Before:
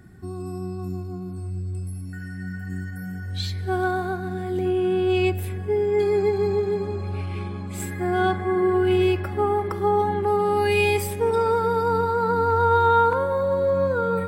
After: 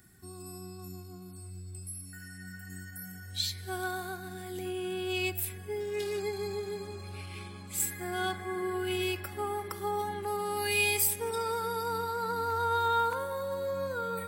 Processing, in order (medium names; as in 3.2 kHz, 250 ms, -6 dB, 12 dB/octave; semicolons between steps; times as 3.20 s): 5.80–6.20 s: self-modulated delay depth 0.1 ms; pre-emphasis filter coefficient 0.9; trim +5.5 dB